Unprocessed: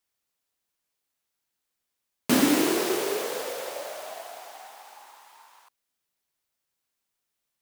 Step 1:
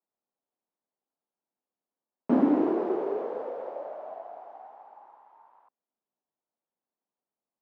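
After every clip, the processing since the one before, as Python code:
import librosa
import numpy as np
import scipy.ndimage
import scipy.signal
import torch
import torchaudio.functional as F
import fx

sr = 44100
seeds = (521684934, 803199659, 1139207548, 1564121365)

y = scipy.signal.sosfilt(scipy.signal.cheby1(2, 1.0, [210.0, 850.0], 'bandpass', fs=sr, output='sos'), x)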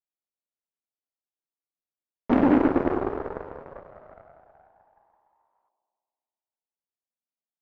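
y = fx.echo_wet_lowpass(x, sr, ms=100, feedback_pct=71, hz=600.0, wet_db=-4)
y = fx.cheby_harmonics(y, sr, harmonics=(5, 6, 7), levels_db=(-31, -21, -17), full_scale_db=-11.0)
y = F.gain(torch.from_numpy(y), 2.0).numpy()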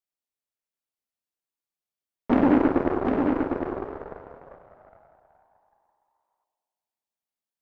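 y = x + 10.0 ** (-5.0 / 20.0) * np.pad(x, (int(754 * sr / 1000.0), 0))[:len(x)]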